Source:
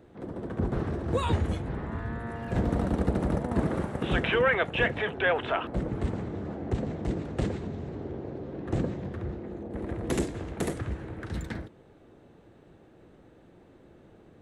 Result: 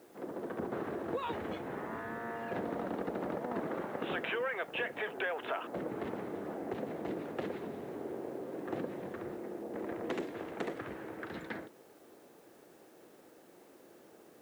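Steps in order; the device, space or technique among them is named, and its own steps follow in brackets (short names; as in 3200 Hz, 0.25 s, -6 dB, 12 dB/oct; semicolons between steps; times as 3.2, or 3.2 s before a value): baby monitor (BPF 330–3000 Hz; compressor, threshold -33 dBFS, peak gain reduction 12.5 dB; white noise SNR 29 dB)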